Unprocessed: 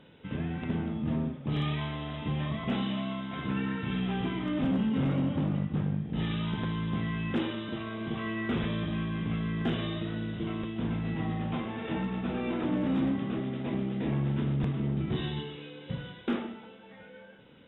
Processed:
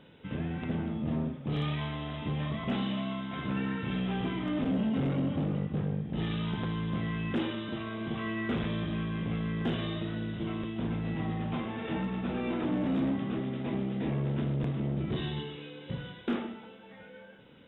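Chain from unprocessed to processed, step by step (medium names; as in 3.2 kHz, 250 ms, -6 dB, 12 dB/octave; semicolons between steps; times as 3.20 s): transformer saturation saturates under 200 Hz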